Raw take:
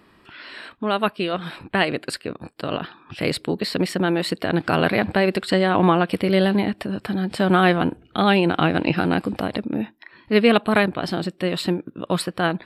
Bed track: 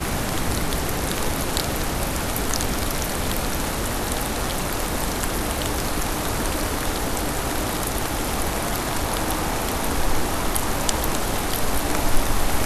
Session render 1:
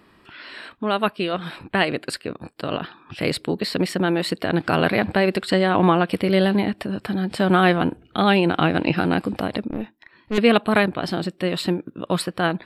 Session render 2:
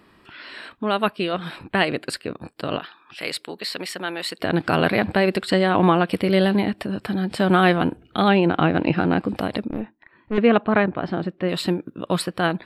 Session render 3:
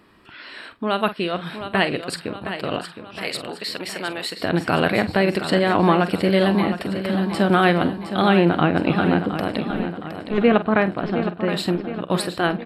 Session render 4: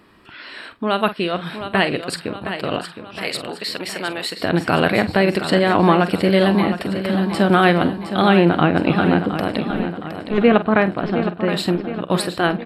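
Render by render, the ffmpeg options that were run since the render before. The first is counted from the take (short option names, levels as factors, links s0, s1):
-filter_complex "[0:a]asettb=1/sr,asplit=3[s0][s1][s2];[s0]atrim=end=9.684[s3];[s1]atrim=start=9.68:end=10.38,asetpts=PTS-STARTPTS,afade=t=in:d=0.004:c=qsin,afade=t=out:st=0.696:d=0.004:c=qsin,aeval=exprs='(tanh(7.94*val(0)+0.75)-tanh(0.75))/7.94':c=same[s4];[s2]atrim=start=10.376[s5];[s3][s4]acrossfade=d=0.004:c1=hsin:c2=qsin[s6];[s6][s5]acrossfade=d=0.004:c1=qsin:c2=hsin"
-filter_complex "[0:a]asettb=1/sr,asplit=3[s0][s1][s2];[s0]atrim=end=2.804[s3];[s1]atrim=start=2.8:end=4.4,asetpts=PTS-STARTPTS,afade=t=in:d=0.004:c=qsin,afade=t=out:st=1.596:d=0.004:c=qsin,highpass=f=1200:p=1[s4];[s2]atrim=start=4.396[s5];[s3][s4]acrossfade=d=0.004:c1=hsin:c2=qsin[s6];[s6][s5]acrossfade=d=0.004:c1=qsin:c2=hsin,asettb=1/sr,asplit=3[s7][s8][s9];[s7]atrim=end=8.284[s10];[s8]atrim=start=8.28:end=9.29,asetpts=PTS-STARTPTS,afade=t=in:d=0.004:c=qsin,afade=t=out:st=1.006:d=0.004:c=qsin,aemphasis=mode=reproduction:type=75fm[s11];[s9]atrim=start=9.286[s12];[s10][s11]acrossfade=d=0.004:c1=hsin:c2=qsin[s13];[s13][s12]acrossfade=d=0.004:c1=qsin:c2=hsin,asettb=1/sr,asplit=3[s14][s15][s16];[s14]atrim=end=9.804[s17];[s15]atrim=start=9.8:end=11.49,asetpts=PTS-STARTPTS,afade=t=in:d=0.004:c=qsin,afade=t=out:st=1.686:d=0.004:c=qsin,lowpass=2000[s18];[s16]atrim=start=11.486[s19];[s17][s18]acrossfade=d=0.004:c1=hsin:c2=qsin[s20];[s20][s19]acrossfade=d=0.004:c1=qsin:c2=hsin"
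-filter_complex "[0:a]asplit=2[s0][s1];[s1]adelay=46,volume=0.224[s2];[s0][s2]amix=inputs=2:normalize=0,aecho=1:1:715|1430|2145|2860|3575|4290:0.316|0.168|0.0888|0.0471|0.025|0.0132"
-af "volume=1.33,alimiter=limit=0.794:level=0:latency=1"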